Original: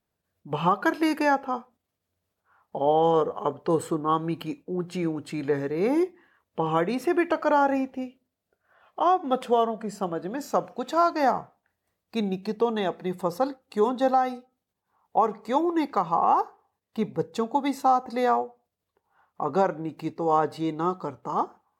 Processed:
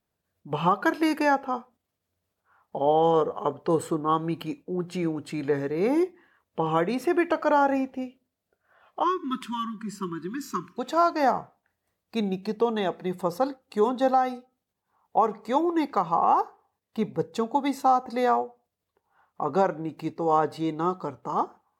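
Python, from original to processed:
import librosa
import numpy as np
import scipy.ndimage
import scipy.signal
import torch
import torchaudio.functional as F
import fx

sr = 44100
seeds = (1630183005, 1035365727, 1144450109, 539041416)

y = fx.spec_erase(x, sr, start_s=9.04, length_s=1.74, low_hz=390.0, high_hz=930.0)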